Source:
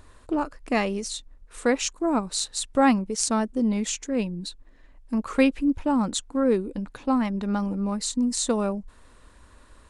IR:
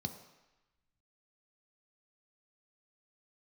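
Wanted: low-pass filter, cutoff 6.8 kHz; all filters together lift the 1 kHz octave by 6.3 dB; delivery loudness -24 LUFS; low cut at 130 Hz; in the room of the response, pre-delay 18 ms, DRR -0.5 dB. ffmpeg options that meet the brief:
-filter_complex "[0:a]highpass=130,lowpass=6800,equalizer=f=1000:t=o:g=8,asplit=2[s0][s1];[1:a]atrim=start_sample=2205,adelay=18[s2];[s1][s2]afir=irnorm=-1:irlink=0,volume=1.12[s3];[s0][s3]amix=inputs=2:normalize=0,volume=0.422"

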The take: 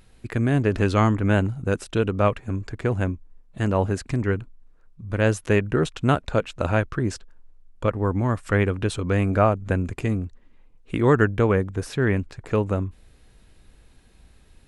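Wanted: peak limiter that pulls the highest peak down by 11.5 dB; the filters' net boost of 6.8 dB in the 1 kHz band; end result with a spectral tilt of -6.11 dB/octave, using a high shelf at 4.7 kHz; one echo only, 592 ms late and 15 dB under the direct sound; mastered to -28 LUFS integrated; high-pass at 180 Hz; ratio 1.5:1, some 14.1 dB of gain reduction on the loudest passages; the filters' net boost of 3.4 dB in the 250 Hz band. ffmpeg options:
-af "highpass=180,equalizer=f=250:t=o:g=5.5,equalizer=f=1000:t=o:g=9,highshelf=f=4700:g=-6.5,acompressor=threshold=0.00316:ratio=1.5,alimiter=level_in=1.12:limit=0.0631:level=0:latency=1,volume=0.891,aecho=1:1:592:0.178,volume=3.16"

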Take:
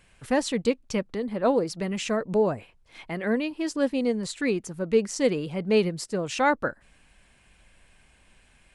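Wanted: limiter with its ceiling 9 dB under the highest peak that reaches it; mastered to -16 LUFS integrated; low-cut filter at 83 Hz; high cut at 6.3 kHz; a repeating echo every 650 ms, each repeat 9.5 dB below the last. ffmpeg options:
-af "highpass=83,lowpass=6300,alimiter=limit=0.112:level=0:latency=1,aecho=1:1:650|1300|1950|2600:0.335|0.111|0.0365|0.012,volume=4.73"

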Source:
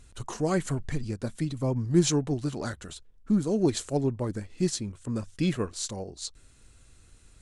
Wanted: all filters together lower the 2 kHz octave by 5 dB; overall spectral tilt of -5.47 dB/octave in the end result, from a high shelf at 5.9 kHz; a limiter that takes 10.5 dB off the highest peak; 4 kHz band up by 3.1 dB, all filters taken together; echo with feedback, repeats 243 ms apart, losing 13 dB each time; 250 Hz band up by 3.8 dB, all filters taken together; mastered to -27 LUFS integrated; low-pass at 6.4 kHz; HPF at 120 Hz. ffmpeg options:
-af "highpass=120,lowpass=6400,equalizer=f=250:t=o:g=6,equalizer=f=2000:t=o:g=-8.5,equalizer=f=4000:t=o:g=8,highshelf=f=5900:g=-4,alimiter=limit=0.126:level=0:latency=1,aecho=1:1:243|486|729:0.224|0.0493|0.0108,volume=1.41"

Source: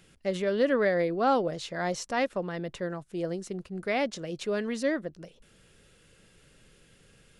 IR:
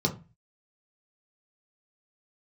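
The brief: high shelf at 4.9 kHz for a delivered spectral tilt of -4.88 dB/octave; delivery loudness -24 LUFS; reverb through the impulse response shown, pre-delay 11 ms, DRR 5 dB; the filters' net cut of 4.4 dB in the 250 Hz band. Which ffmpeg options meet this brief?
-filter_complex "[0:a]equalizer=f=250:t=o:g=-6,highshelf=f=4900:g=-3.5,asplit=2[s0][s1];[1:a]atrim=start_sample=2205,adelay=11[s2];[s1][s2]afir=irnorm=-1:irlink=0,volume=0.2[s3];[s0][s3]amix=inputs=2:normalize=0,volume=1.68"

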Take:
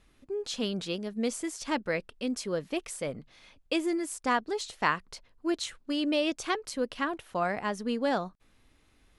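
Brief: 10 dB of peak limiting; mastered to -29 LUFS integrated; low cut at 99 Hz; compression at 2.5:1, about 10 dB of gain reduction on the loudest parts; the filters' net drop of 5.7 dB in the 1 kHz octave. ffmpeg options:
-af "highpass=99,equalizer=f=1000:t=o:g=-7.5,acompressor=threshold=0.00891:ratio=2.5,volume=5.62,alimiter=limit=0.112:level=0:latency=1"

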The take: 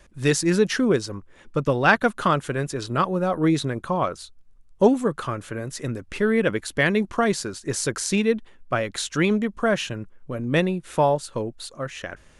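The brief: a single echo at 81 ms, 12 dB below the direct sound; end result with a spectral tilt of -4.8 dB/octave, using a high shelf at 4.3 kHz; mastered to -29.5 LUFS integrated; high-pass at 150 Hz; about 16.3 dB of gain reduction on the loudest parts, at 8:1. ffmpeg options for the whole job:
-af "highpass=150,highshelf=f=4300:g=-8,acompressor=threshold=0.0355:ratio=8,aecho=1:1:81:0.251,volume=1.78"

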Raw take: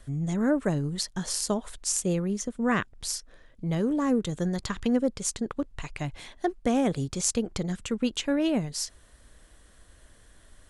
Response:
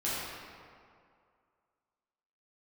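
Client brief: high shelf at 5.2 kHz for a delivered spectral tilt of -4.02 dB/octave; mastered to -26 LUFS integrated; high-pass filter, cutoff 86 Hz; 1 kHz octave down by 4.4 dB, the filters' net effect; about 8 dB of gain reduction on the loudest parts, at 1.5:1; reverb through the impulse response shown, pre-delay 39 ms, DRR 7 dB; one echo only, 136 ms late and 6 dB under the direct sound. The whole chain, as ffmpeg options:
-filter_complex "[0:a]highpass=86,equalizer=f=1000:t=o:g=-6.5,highshelf=f=5200:g=4.5,acompressor=threshold=0.00631:ratio=1.5,aecho=1:1:136:0.501,asplit=2[s0][s1];[1:a]atrim=start_sample=2205,adelay=39[s2];[s1][s2]afir=irnorm=-1:irlink=0,volume=0.188[s3];[s0][s3]amix=inputs=2:normalize=0,volume=2.51"

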